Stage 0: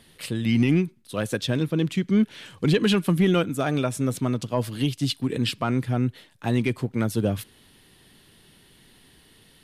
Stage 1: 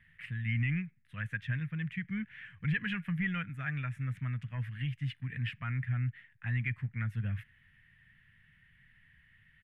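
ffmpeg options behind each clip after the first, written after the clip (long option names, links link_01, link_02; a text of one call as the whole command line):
ffmpeg -i in.wav -af "firequalizer=gain_entry='entry(130,0);entry(340,-30);entry(1100,-13);entry(1800,8);entry(4200,-28)':delay=0.05:min_phase=1,volume=-5.5dB" out.wav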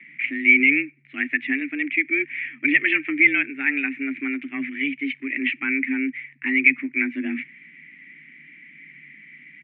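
ffmpeg -i in.wav -af "afreqshift=140,lowpass=frequency=2300:width_type=q:width=9.3,volume=6.5dB" out.wav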